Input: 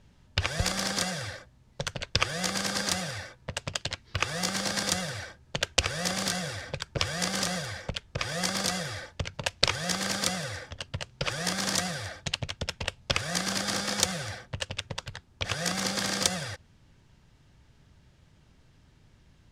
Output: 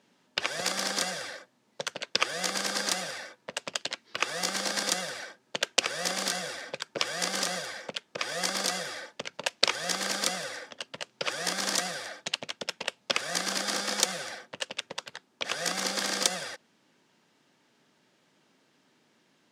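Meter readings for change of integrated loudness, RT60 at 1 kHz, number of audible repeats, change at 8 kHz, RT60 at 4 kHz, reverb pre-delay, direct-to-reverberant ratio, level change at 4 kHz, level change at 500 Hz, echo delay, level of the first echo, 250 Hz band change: −0.5 dB, no reverb audible, no echo audible, 0.0 dB, no reverb audible, no reverb audible, no reverb audible, 0.0 dB, 0.0 dB, no echo audible, no echo audible, −6.0 dB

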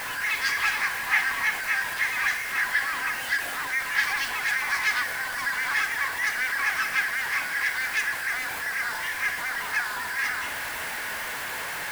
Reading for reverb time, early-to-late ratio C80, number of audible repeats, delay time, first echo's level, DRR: 1.1 s, 12.0 dB, no echo audible, no echo audible, no echo audible, 7.5 dB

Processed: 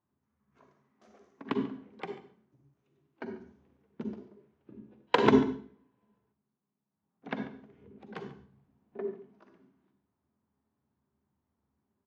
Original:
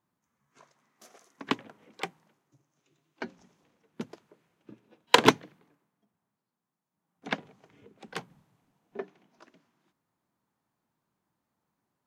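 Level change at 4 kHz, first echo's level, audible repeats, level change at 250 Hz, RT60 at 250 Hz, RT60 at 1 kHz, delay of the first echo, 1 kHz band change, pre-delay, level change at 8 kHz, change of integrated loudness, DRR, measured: −11.5 dB, −17.5 dB, 1, +4.0 dB, 0.60 s, 0.45 s, 141 ms, −4.5 dB, 38 ms, below −15 dB, −3.0 dB, 4.5 dB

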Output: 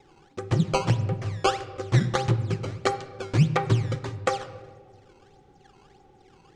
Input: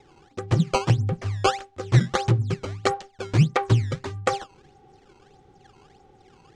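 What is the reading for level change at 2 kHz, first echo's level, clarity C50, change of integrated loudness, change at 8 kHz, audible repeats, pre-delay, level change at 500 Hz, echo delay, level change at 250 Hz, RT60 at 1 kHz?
−1.5 dB, no echo audible, 13.0 dB, −2.0 dB, −2.0 dB, no echo audible, 4 ms, −1.0 dB, no echo audible, −1.0 dB, 1.3 s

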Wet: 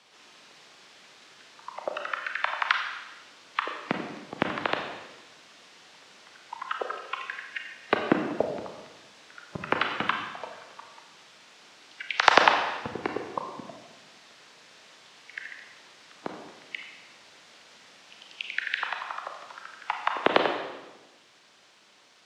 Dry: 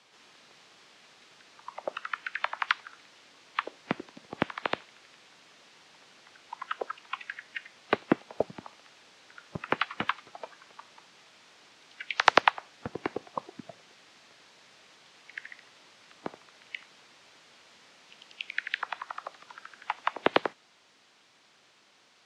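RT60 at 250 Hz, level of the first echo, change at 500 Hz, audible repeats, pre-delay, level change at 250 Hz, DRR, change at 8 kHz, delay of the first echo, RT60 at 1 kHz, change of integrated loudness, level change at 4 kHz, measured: 1.3 s, no echo audible, +3.5 dB, no echo audible, 29 ms, +3.0 dB, 3.0 dB, +4.0 dB, no echo audible, 1.1 s, +3.5 dB, +4.0 dB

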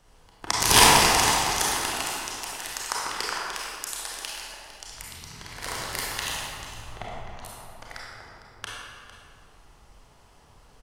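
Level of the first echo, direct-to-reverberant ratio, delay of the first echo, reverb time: −14.5 dB, −5.0 dB, 454 ms, 2.1 s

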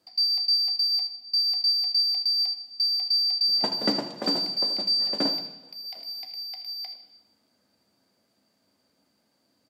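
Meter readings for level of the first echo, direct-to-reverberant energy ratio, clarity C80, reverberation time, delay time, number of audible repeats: −14.0 dB, 5.0 dB, 11.5 dB, 1.0 s, 79 ms, 1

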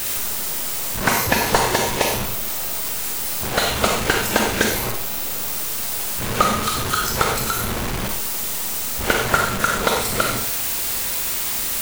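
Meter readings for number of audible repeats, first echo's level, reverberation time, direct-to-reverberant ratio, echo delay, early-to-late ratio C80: no echo audible, no echo audible, 0.45 s, 2.5 dB, no echo audible, 8.5 dB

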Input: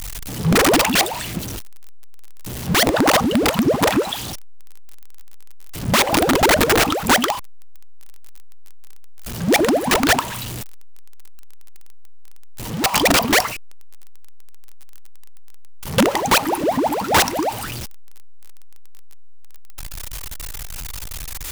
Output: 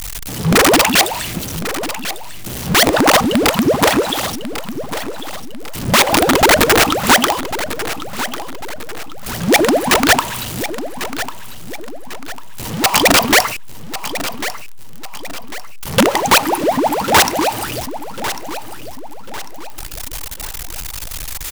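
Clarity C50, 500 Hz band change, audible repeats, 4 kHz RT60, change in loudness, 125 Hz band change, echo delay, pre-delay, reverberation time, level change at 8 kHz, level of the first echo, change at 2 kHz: no reverb audible, +4.0 dB, 3, no reverb audible, +3.0 dB, +2.0 dB, 1,097 ms, no reverb audible, no reverb audible, +5.5 dB, −12.0 dB, +5.0 dB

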